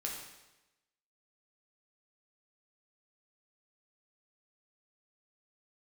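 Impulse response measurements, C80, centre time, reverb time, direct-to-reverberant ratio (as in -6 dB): 5.5 dB, 49 ms, 1.0 s, -2.0 dB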